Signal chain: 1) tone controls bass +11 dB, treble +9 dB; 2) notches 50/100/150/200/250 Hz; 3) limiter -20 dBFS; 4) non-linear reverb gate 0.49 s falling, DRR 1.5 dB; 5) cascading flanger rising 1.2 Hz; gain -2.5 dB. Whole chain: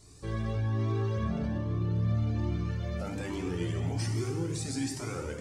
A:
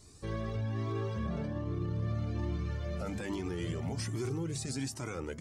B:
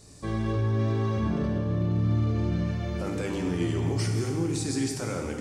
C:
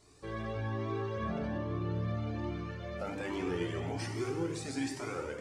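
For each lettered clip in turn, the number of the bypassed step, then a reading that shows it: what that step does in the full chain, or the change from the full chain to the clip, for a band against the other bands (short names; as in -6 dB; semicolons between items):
4, momentary loudness spread change -3 LU; 5, loudness change +4.5 LU; 1, 125 Hz band -7.0 dB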